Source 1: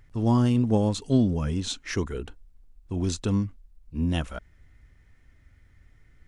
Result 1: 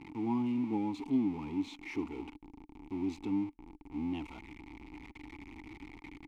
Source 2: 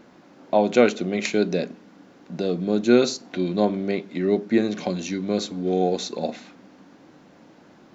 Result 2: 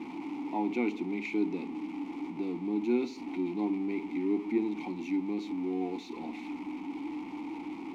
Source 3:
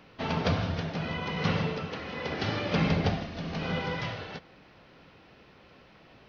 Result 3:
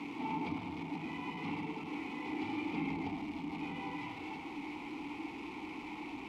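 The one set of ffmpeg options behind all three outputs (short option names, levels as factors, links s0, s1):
-filter_complex "[0:a]aeval=exprs='val(0)+0.5*0.0596*sgn(val(0))':c=same,asubboost=boost=4.5:cutoff=62,asplit=3[s0][s1][s2];[s0]bandpass=f=300:t=q:w=8,volume=1[s3];[s1]bandpass=f=870:t=q:w=8,volume=0.501[s4];[s2]bandpass=f=2240:t=q:w=8,volume=0.355[s5];[s3][s4][s5]amix=inputs=3:normalize=0"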